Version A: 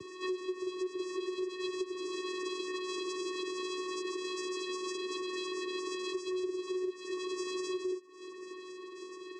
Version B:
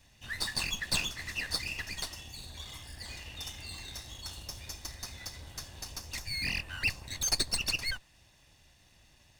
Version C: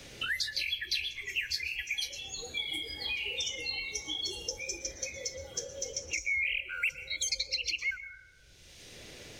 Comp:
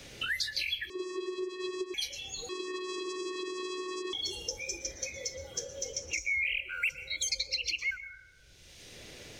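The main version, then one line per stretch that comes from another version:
C
0.9–1.94 from A
2.49–4.13 from A
not used: B

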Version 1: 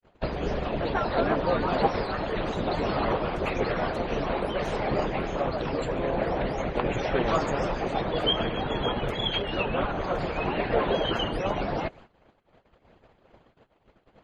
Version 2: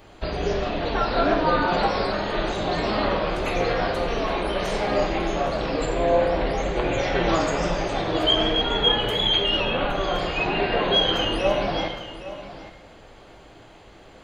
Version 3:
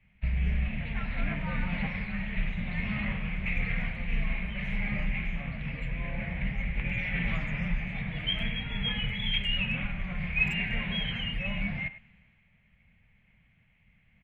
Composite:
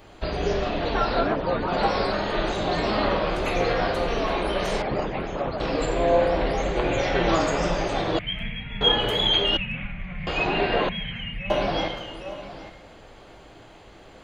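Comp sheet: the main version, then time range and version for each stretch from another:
2
1.24–1.76 from 1, crossfade 0.24 s
4.82–5.6 from 1
8.19–8.81 from 3
9.57–10.27 from 3
10.89–11.5 from 3

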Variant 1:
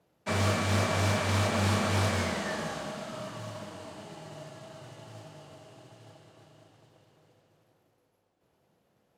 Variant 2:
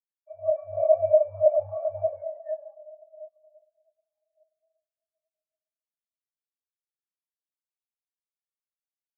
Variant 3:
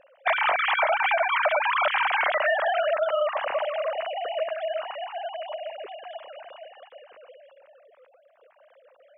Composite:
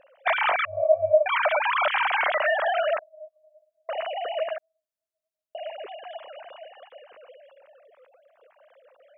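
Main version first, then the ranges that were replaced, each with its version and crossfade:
3
0.65–1.26 from 2
2.99–3.89 from 2
4.58–5.55 from 2
not used: 1

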